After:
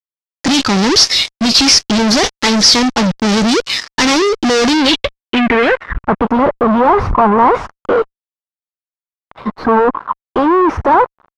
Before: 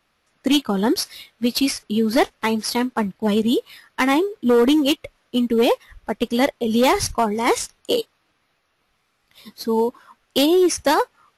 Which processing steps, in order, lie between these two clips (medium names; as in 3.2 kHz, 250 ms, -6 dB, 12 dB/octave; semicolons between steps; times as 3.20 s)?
fuzz box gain 38 dB, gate -48 dBFS; low-pass sweep 5.6 kHz -> 1.1 kHz, 4.66–6.19 s; trim +2 dB